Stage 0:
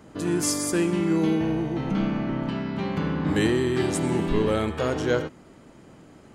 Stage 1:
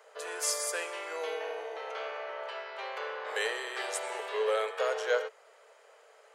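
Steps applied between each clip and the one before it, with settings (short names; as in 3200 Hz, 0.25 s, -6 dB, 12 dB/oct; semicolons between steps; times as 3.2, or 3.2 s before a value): rippled Chebyshev high-pass 430 Hz, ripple 3 dB; gain -1.5 dB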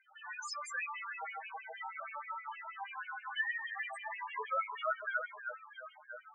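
echo with dull and thin repeats by turns 0.334 s, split 1800 Hz, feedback 64%, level -6 dB; LFO high-pass sine 6.3 Hz 810–2600 Hz; loudest bins only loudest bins 4; gain -1 dB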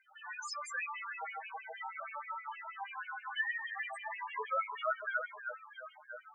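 low shelf 360 Hz +5 dB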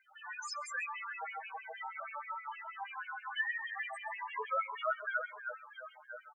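echo 0.134 s -22.5 dB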